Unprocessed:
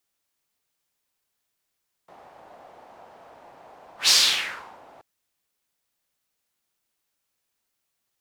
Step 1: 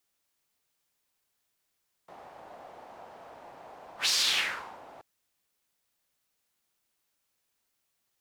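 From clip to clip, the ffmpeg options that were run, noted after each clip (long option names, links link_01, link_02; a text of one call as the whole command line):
ffmpeg -i in.wav -af "alimiter=limit=-17dB:level=0:latency=1:release=61" out.wav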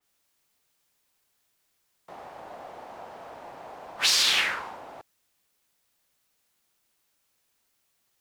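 ffmpeg -i in.wav -af "adynamicequalizer=threshold=0.0126:dfrequency=3100:dqfactor=0.7:tfrequency=3100:tqfactor=0.7:attack=5:release=100:ratio=0.375:range=2.5:mode=cutabove:tftype=highshelf,volume=5.5dB" out.wav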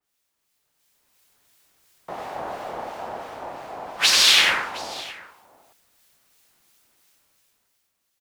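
ffmpeg -i in.wav -filter_complex "[0:a]dynaudnorm=framelen=150:gausssize=13:maxgain=14dB,acrossover=split=1800[link_01][link_02];[link_01]aeval=exprs='val(0)*(1-0.5/2+0.5/2*cos(2*PI*2.9*n/s))':channel_layout=same[link_03];[link_02]aeval=exprs='val(0)*(1-0.5/2-0.5/2*cos(2*PI*2.9*n/s))':channel_layout=same[link_04];[link_03][link_04]amix=inputs=2:normalize=0,asplit=2[link_05][link_06];[link_06]aecho=0:1:95|714:0.596|0.106[link_07];[link_05][link_07]amix=inputs=2:normalize=0,volume=-2dB" out.wav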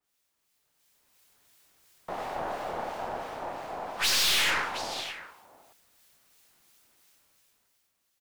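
ffmpeg -i in.wav -af "aeval=exprs='(tanh(14.1*val(0)+0.4)-tanh(0.4))/14.1':channel_layout=same" out.wav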